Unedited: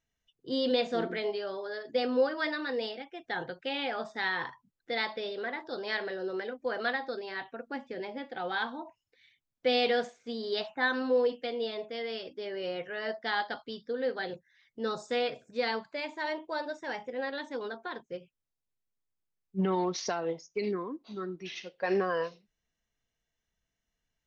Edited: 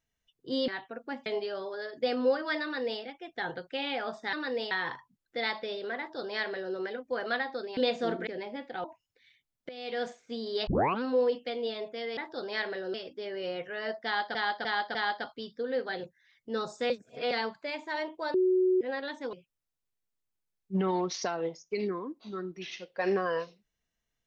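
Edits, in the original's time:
0.68–1.18 swap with 7.31–7.89
2.55–2.93 copy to 4.25
5.52–6.29 copy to 12.14
8.46–8.81 cut
9.66–10.07 fade in quadratic, from -19.5 dB
10.64 tape start 0.35 s
13.25–13.55 loop, 4 plays
15.2–15.61 reverse
16.64–17.11 bleep 370 Hz -21.5 dBFS
17.63–18.17 cut

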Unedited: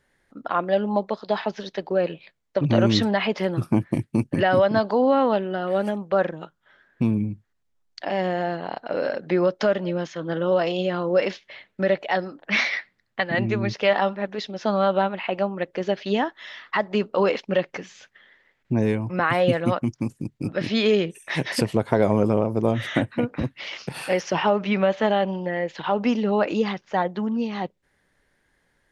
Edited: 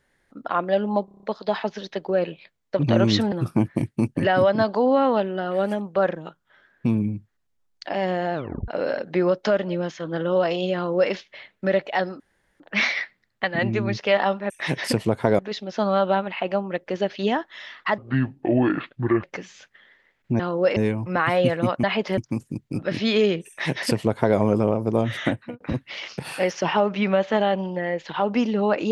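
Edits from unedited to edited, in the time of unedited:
1.05 stutter 0.03 s, 7 plays
3.14–3.48 move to 19.87
8.5 tape stop 0.34 s
10.91–11.28 copy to 18.8
12.36 insert room tone 0.40 s
16.85–17.64 speed 63%
21.18–22.07 copy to 14.26
22.94–23.3 fade out

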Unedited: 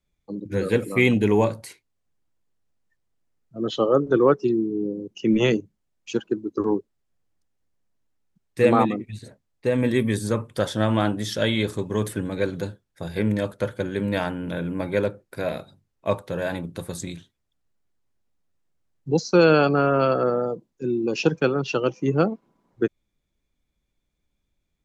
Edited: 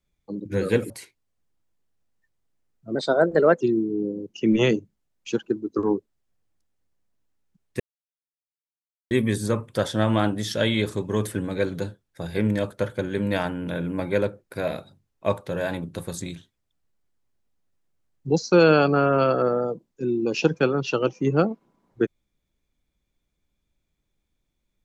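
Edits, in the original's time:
0.9–1.58 cut
3.63–4.42 speed 120%
8.61–9.92 mute

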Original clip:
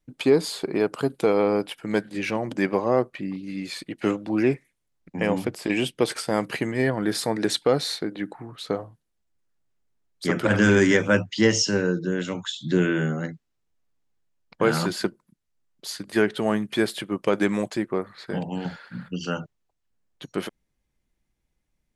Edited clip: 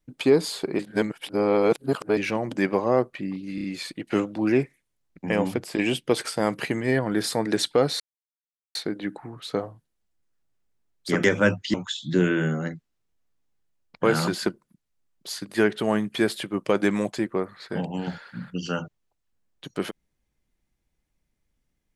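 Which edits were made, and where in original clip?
0.79–2.17 reverse
3.55 stutter 0.03 s, 4 plays
7.91 insert silence 0.75 s
10.4–10.92 cut
11.42–12.32 cut

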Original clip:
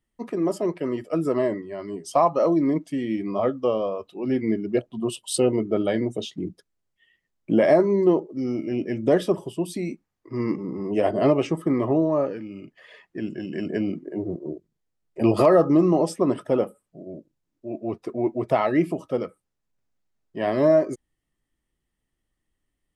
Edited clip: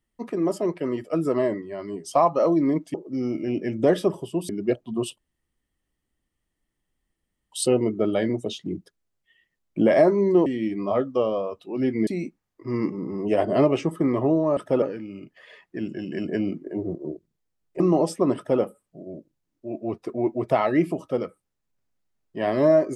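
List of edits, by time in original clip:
2.94–4.55 swap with 8.18–9.73
5.24 insert room tone 2.34 s
15.21–15.8 cut
16.36–16.61 copy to 12.23

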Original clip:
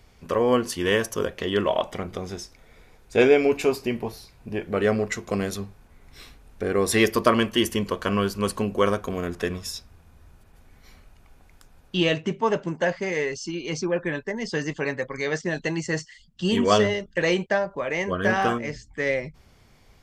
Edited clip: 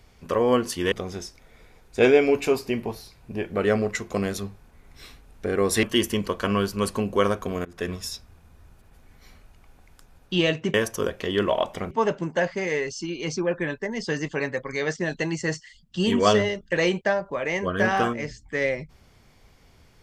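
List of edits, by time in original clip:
0.92–2.09 move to 12.36
7–7.45 cut
9.27–9.53 fade in, from -23.5 dB

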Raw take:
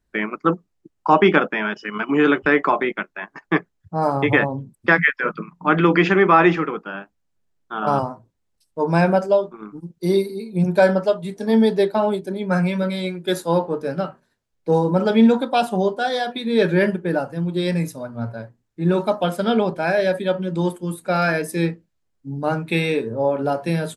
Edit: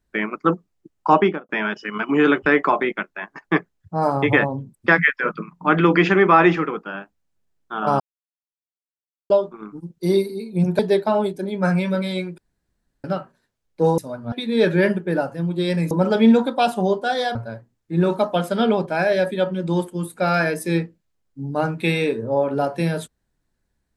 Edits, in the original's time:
1.12–1.49 studio fade out
8–9.3 mute
10.79–11.67 cut
13.26–13.92 room tone
14.86–16.3 swap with 17.89–18.23

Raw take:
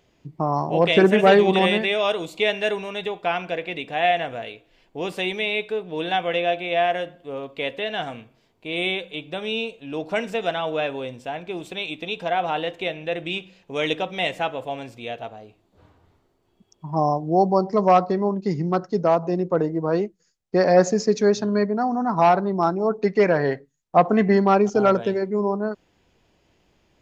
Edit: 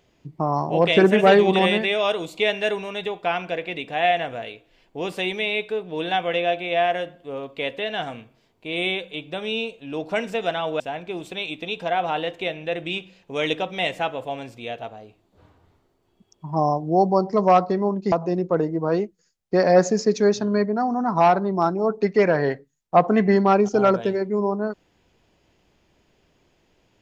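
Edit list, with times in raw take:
10.8–11.2 cut
18.52–19.13 cut

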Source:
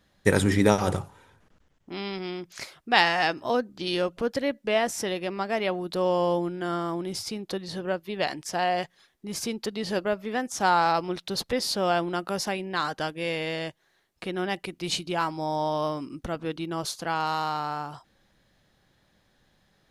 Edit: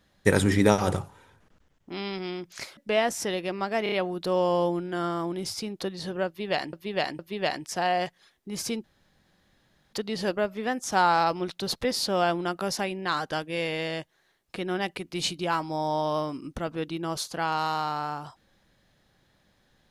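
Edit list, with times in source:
2.77–4.55 cut
5.61 stutter 0.03 s, 4 plays
7.96–8.42 loop, 3 plays
9.61 insert room tone 1.09 s

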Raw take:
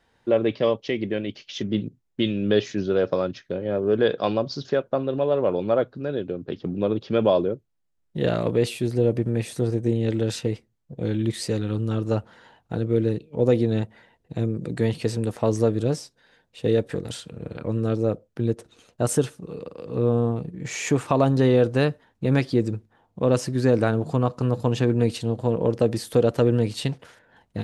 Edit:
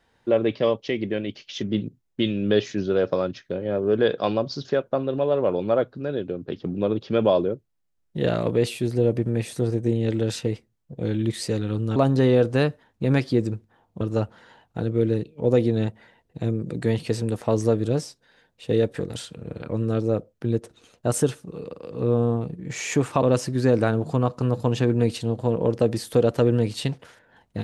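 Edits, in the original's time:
21.17–23.22 move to 11.96

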